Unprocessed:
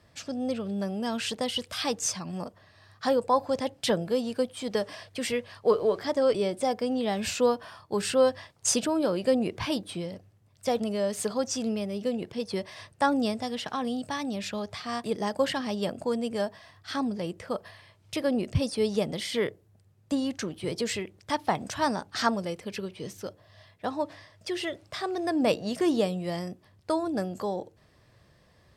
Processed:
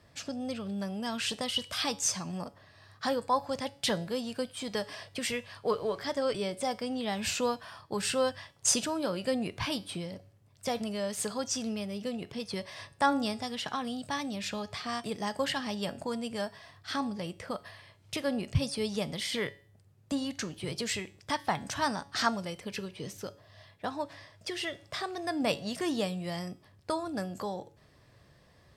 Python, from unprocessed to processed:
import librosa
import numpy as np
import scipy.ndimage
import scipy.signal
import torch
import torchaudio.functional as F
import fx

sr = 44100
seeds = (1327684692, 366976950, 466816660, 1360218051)

y = fx.dynamic_eq(x, sr, hz=400.0, q=0.75, threshold_db=-39.0, ratio=4.0, max_db=-8)
y = fx.comb_fb(y, sr, f0_hz=140.0, decay_s=0.44, harmonics='all', damping=0.0, mix_pct=50)
y = F.gain(torch.from_numpy(y), 5.0).numpy()